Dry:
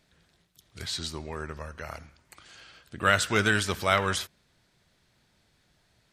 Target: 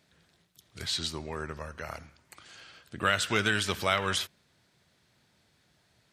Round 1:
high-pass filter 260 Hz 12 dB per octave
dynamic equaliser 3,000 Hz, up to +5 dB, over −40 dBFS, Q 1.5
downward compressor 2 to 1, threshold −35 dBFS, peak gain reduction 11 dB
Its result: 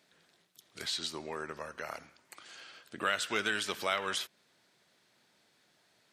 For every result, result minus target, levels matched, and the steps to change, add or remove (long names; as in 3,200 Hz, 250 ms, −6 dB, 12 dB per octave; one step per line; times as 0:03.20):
125 Hz band −11.0 dB; downward compressor: peak gain reduction +5 dB
change: high-pass filter 75 Hz 12 dB per octave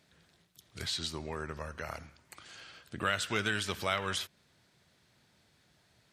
downward compressor: peak gain reduction +5 dB
change: downward compressor 2 to 1, threshold −25 dBFS, peak gain reduction 6 dB